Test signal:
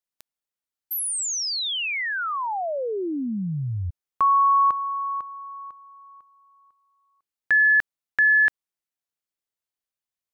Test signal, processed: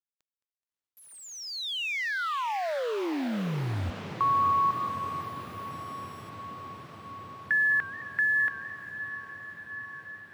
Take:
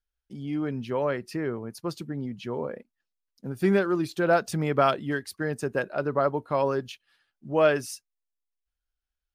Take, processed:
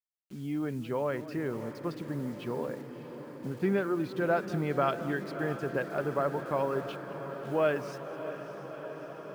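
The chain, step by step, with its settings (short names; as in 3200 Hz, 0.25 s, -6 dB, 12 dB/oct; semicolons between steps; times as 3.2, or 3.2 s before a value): LPF 3200 Hz 12 dB/oct; gate with hold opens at -51 dBFS, hold 71 ms, range -21 dB; in parallel at +1 dB: compressor 8:1, threshold -27 dBFS; on the sum: requantised 8-bit, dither none; on a send: diffused feedback echo 0.633 s, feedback 79%, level -12 dB; on the sum: warbling echo 0.213 s, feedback 55%, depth 138 cents, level -17 dB; gain -9 dB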